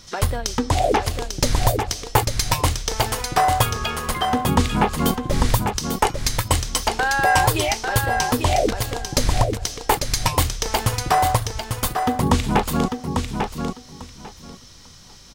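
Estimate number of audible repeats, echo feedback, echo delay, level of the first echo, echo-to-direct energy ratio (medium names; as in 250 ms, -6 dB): 2, 18%, 846 ms, -5.5 dB, -5.5 dB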